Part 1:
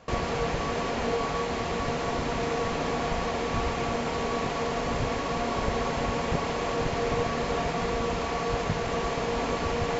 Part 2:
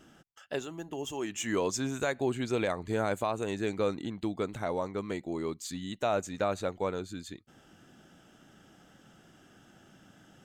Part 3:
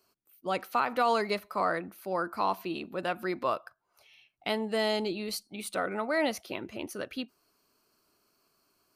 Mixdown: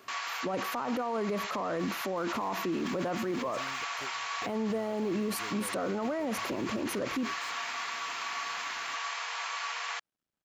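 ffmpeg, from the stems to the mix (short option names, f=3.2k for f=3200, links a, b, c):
-filter_complex "[0:a]highpass=f=1.1k:w=0.5412,highpass=f=1.1k:w=1.3066,volume=-7dB[a];[1:a]acompressor=mode=upward:threshold=-34dB:ratio=2.5,acrusher=bits=6:mix=0:aa=0.000001,adelay=1800,volume=-15dB[b];[2:a]equalizer=f=125:t=o:w=1:g=10,equalizer=f=250:t=o:w=1:g=10,equalizer=f=500:t=o:w=1:g=7,equalizer=f=1k:t=o:w=1:g=8,equalizer=f=4k:t=o:w=1:g=-11,acompressor=threshold=-21dB:ratio=6,volume=-1dB,asplit=2[c][d];[d]apad=whole_len=539962[e];[b][e]sidechaingate=range=-31dB:threshold=-59dB:ratio=16:detection=peak[f];[a][c]amix=inputs=2:normalize=0,acontrast=87,alimiter=limit=-19.5dB:level=0:latency=1:release=43,volume=0dB[g];[f][g]amix=inputs=2:normalize=0,alimiter=level_in=1dB:limit=-24dB:level=0:latency=1:release=20,volume=-1dB"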